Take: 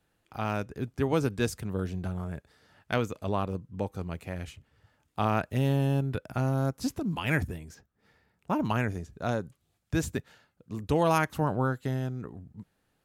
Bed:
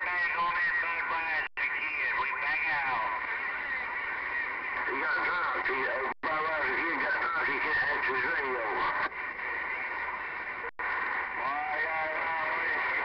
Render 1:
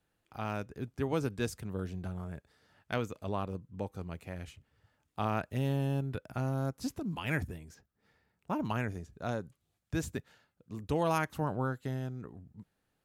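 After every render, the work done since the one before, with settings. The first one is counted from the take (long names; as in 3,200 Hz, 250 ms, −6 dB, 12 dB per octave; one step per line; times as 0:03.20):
level −5.5 dB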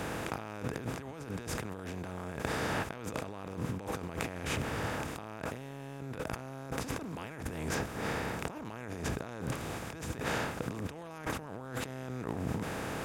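compressor on every frequency bin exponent 0.4
compressor whose output falls as the input rises −39 dBFS, ratio −1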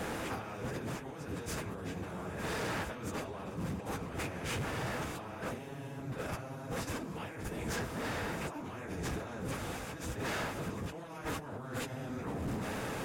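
random phases in long frames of 50 ms
hard clipping −32.5 dBFS, distortion −13 dB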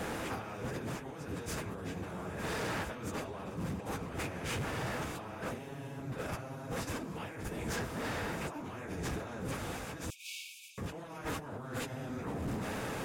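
0:10.10–0:10.78: linear-phase brick-wall high-pass 2,200 Hz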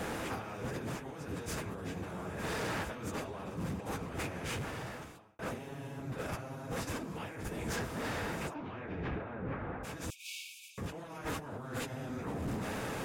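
0:04.38–0:05.39: fade out
0:08.53–0:09.83: low-pass filter 4,300 Hz → 1,700 Hz 24 dB per octave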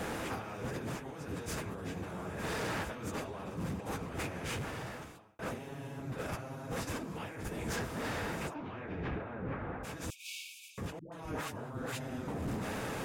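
0:10.99–0:12.28: all-pass dispersion highs, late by 130 ms, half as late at 520 Hz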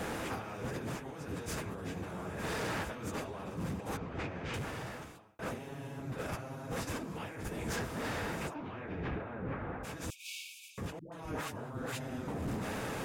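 0:03.97–0:04.54: high-frequency loss of the air 160 metres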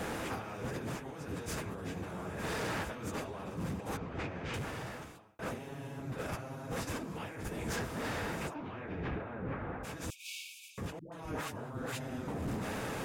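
no processing that can be heard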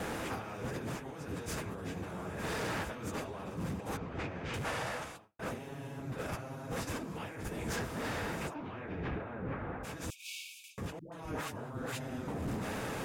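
0:04.65–0:05.17: gain on a spectral selection 470–12,000 Hz +7 dB
noise gate with hold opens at −41 dBFS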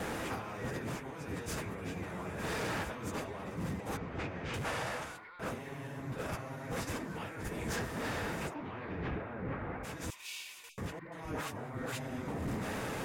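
mix in bed −23 dB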